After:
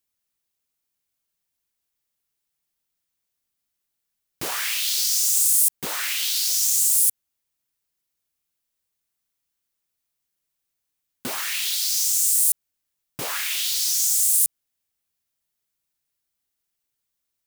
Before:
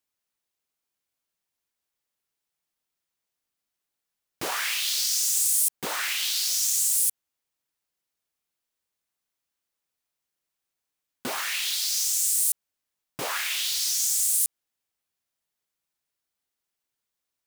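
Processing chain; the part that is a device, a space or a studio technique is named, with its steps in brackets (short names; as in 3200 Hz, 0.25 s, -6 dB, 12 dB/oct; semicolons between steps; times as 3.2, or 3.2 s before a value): smiley-face EQ (low shelf 160 Hz +5 dB; bell 760 Hz -3.5 dB 2.7 oct; high shelf 9900 Hz +5.5 dB); gain +1.5 dB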